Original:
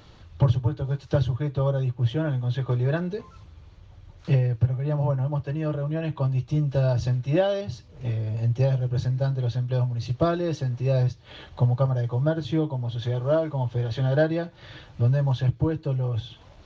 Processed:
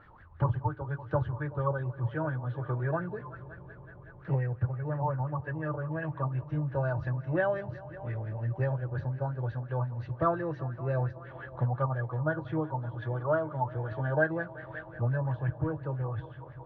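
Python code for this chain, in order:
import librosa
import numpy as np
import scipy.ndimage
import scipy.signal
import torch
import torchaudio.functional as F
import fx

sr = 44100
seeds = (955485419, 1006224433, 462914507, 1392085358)

y = fx.echo_heads(x, sr, ms=189, heads='all three', feedback_pct=67, wet_db=-22.5)
y = fx.filter_lfo_lowpass(y, sr, shape='sine', hz=5.7, low_hz=880.0, high_hz=1800.0, q=7.4)
y = F.gain(torch.from_numpy(y), -8.5).numpy()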